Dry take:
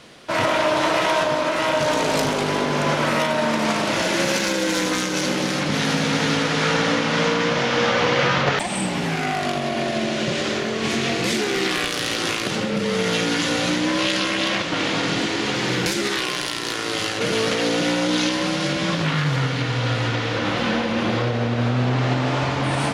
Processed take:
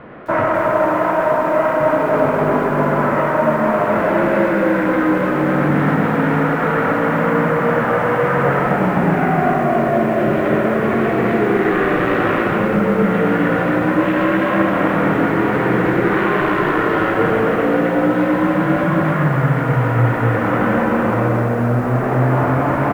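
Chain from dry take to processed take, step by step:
low-pass filter 1,700 Hz 24 dB per octave
in parallel at +1.5 dB: brickwall limiter −18.5 dBFS, peak gain reduction 9.5 dB
on the sum: convolution reverb RT60 0.95 s, pre-delay 40 ms, DRR 2.5 dB
speech leveller 0.5 s
on a send: repeating echo 132 ms, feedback 57%, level −20 dB
on the sum: feedback echo at a low word length 259 ms, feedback 35%, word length 7 bits, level −5 dB
level −1 dB

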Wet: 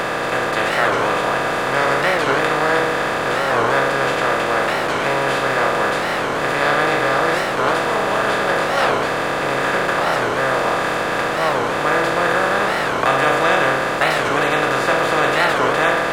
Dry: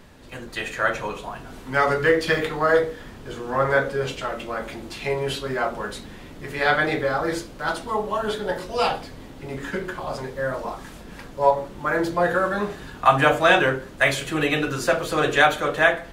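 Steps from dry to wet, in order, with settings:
compressor on every frequency bin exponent 0.2
wow of a warped record 45 rpm, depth 250 cents
level −7 dB

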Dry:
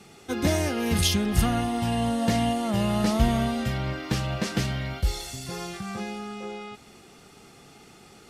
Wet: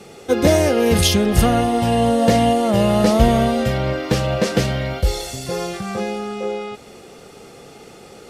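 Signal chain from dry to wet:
parametric band 510 Hz +11.5 dB 0.65 octaves
level +6.5 dB

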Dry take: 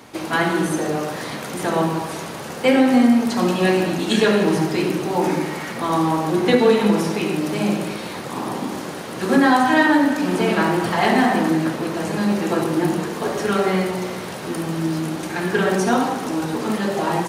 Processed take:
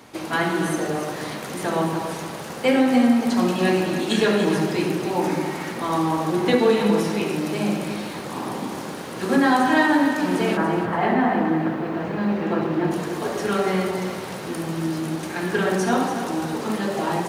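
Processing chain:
0:10.56–0:12.90: low-pass filter 1,600 Hz → 3,000 Hz 12 dB per octave
feedback echo at a low word length 286 ms, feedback 35%, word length 8 bits, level −9.5 dB
level −3 dB

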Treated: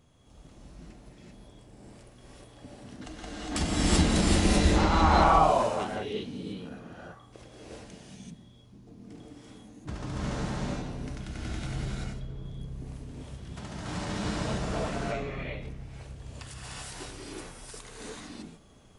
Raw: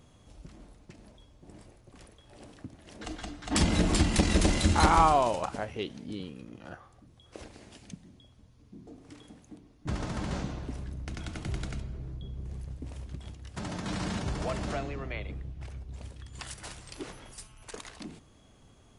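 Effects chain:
0:04.41–0:05.12: high-frequency loss of the air 130 metres
reverb whose tail is shaped and stops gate 410 ms rising, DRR −7 dB
level −5.5 dB

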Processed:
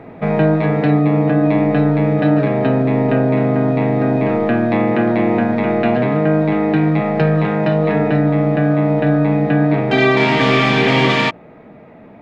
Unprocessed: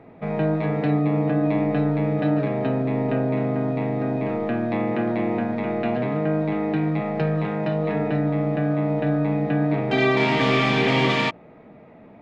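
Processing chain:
parametric band 1,600 Hz +2.5 dB 0.37 octaves
in parallel at 0 dB: speech leveller
on the sum: level +1.5 dB

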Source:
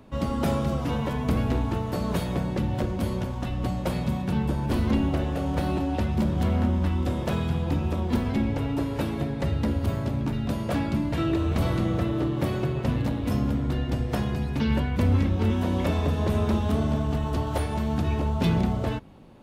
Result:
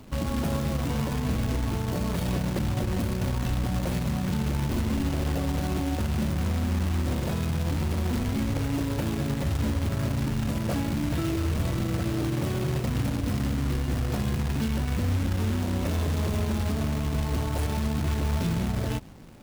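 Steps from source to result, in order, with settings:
low-shelf EQ 250 Hz +7 dB
in parallel at 0 dB: speech leveller 0.5 s
on the sum: brickwall limiter −12 dBFS, peak gain reduction 9 dB
log-companded quantiser 4 bits
level −8.5 dB

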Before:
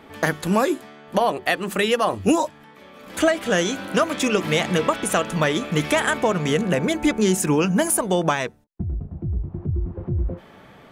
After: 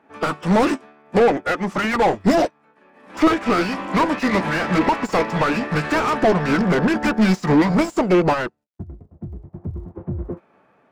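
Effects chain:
formants moved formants −5 semitones
mid-hump overdrive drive 31 dB, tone 1,200 Hz, clips at −4.5 dBFS
surface crackle 52 per second −43 dBFS
expander for the loud parts 2.5 to 1, over −31 dBFS

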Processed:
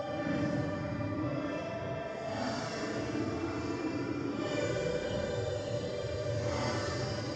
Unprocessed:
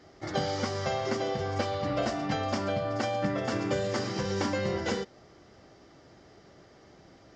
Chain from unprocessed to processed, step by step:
feedback delay network reverb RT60 0.99 s, low-frequency decay 1.2×, high-frequency decay 0.65×, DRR 2 dB
extreme stretch with random phases 8.9×, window 0.05 s, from 0:03.21
level −7.5 dB

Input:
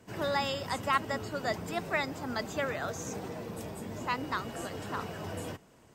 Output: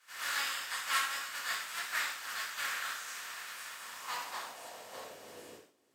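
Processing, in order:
compressing power law on the bin magnitudes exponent 0.28
first-order pre-emphasis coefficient 0.9
band-pass filter sweep 1,400 Hz → 390 Hz, 0:03.63–0:05.55
reverb whose tail is shaped and stops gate 190 ms falling, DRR −7 dB
level +9 dB

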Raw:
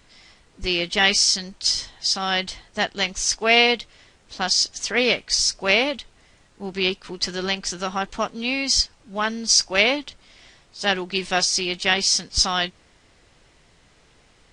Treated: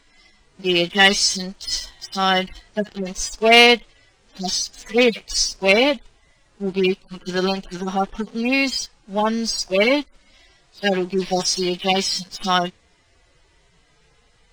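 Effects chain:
harmonic-percussive split with one part muted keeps harmonic
leveller curve on the samples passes 1
level +3.5 dB

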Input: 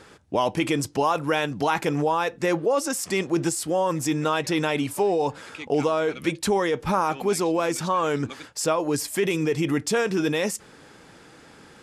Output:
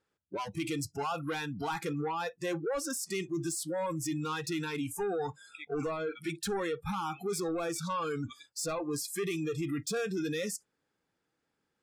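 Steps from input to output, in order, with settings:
soft clipping −23 dBFS, distortion −10 dB
noise reduction from a noise print of the clip's start 27 dB
level −5.5 dB

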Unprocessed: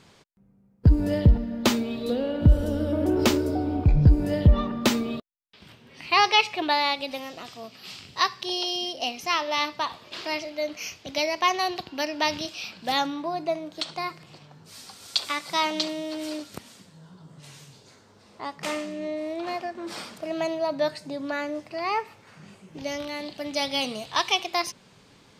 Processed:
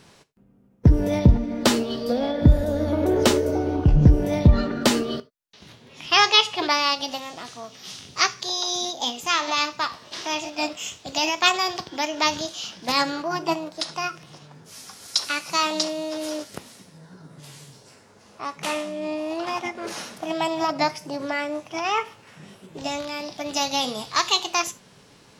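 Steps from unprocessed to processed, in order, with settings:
reverb whose tail is shaped and stops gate 110 ms falling, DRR 11.5 dB
formants moved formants +3 semitones
level +2.5 dB

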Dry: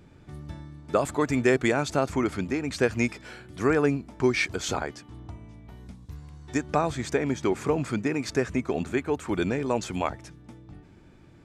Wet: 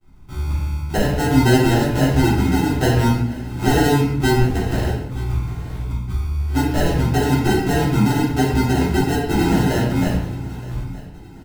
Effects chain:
downward expander −42 dBFS
spectral tilt −3 dB per octave
in parallel at −1.5 dB: downward compressor, threshold −31 dBFS, peak gain reduction 17.5 dB
on the sum: decimation without filtering 38×
on a send: repeating echo 921 ms, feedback 42%, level −19.5 dB
on the sum: rectangular room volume 190 cubic metres, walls mixed, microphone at 3.6 metres
level −10.5 dB

